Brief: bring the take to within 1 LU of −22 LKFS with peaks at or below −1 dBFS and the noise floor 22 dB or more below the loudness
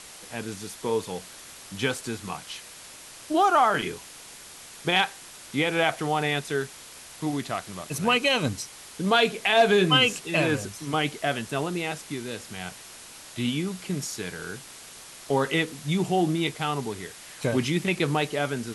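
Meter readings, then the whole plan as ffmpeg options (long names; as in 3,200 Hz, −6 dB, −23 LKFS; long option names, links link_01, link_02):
background noise floor −45 dBFS; target noise floor −48 dBFS; integrated loudness −26.0 LKFS; sample peak −8.0 dBFS; target loudness −22.0 LKFS
→ -af "afftdn=noise_reduction=6:noise_floor=-45"
-af "volume=4dB"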